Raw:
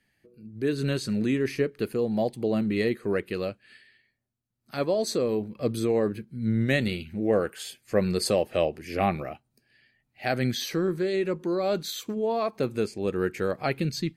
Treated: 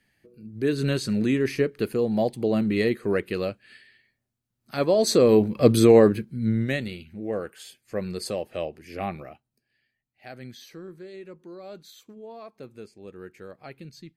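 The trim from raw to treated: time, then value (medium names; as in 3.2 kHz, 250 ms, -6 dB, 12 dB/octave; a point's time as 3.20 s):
4.75 s +2.5 dB
5.37 s +10.5 dB
5.96 s +10.5 dB
6.48 s +2.5 dB
6.88 s -6 dB
9.21 s -6 dB
10.31 s -15 dB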